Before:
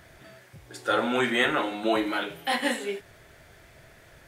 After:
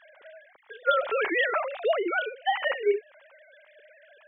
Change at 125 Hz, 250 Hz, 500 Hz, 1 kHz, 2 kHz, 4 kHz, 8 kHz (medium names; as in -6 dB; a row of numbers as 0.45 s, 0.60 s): under -30 dB, -9.5 dB, +2.5 dB, +0.5 dB, 0.0 dB, -5.0 dB, under -35 dB